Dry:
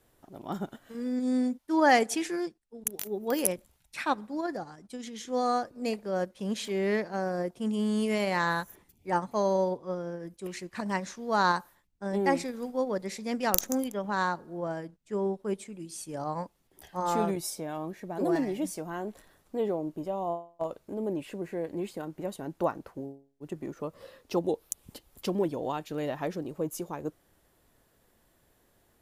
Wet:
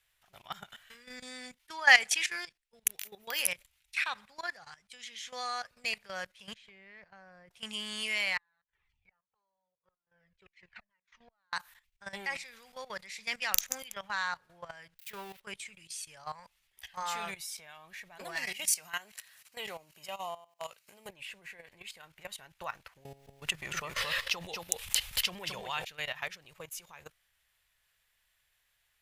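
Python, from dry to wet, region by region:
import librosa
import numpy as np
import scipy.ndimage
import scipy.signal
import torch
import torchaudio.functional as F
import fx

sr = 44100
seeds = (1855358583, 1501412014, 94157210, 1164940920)

y = fx.chain(x, sr, fx.lowpass(hz=1100.0, slope=6),
    fx.low_shelf(hz=200.0, db=9.0),
    fx.level_steps(step_db=18), at=(6.54, 7.51))
y = fx.chain(y, sr, fx.gate_flip(shuts_db=-27.0, range_db=-35),
    fx.spacing_loss(db_at_10k=31),
    fx.comb_cascade(direction='falling', hz=1.8), at=(8.37, 11.53))
y = fx.chain(y, sr, fx.crossing_spikes(level_db=-36.0),
    fx.peak_eq(hz=7400.0, db=-11.0, octaves=1.3),
    fx.doppler_dist(depth_ms=0.13), at=(14.99, 15.4))
y = fx.chain(y, sr, fx.highpass(hz=110.0, slope=24),
    fx.high_shelf(hz=2500.0, db=10.5),
    fx.notch(hz=3500.0, q=9.0), at=(18.37, 21.09))
y = fx.chain(y, sr, fx.high_shelf(hz=9600.0, db=-2.0),
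    fx.echo_single(ms=223, db=-8.0),
    fx.env_flatten(amount_pct=70), at=(23.05, 25.85))
y = fx.peak_eq(y, sr, hz=2400.0, db=12.5, octaves=1.7)
y = fx.level_steps(y, sr, step_db=15)
y = fx.tone_stack(y, sr, knobs='10-0-10')
y = F.gain(torch.from_numpy(y), 4.5).numpy()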